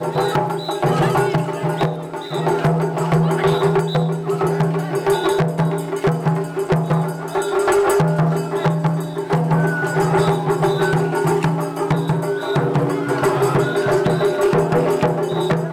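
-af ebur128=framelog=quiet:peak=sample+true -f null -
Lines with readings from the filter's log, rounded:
Integrated loudness:
  I:         -18.6 LUFS
  Threshold: -28.6 LUFS
Loudness range:
  LRA:         1.4 LU
  Threshold: -38.6 LUFS
  LRA low:   -19.3 LUFS
  LRA high:  -17.9 LUFS
Sample peak:
  Peak:       -9.9 dBFS
True peak:
  Peak:       -9.9 dBFS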